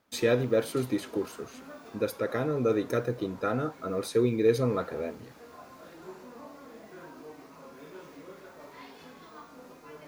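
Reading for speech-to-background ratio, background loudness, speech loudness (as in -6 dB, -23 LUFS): 20.0 dB, -49.0 LUFS, -29.0 LUFS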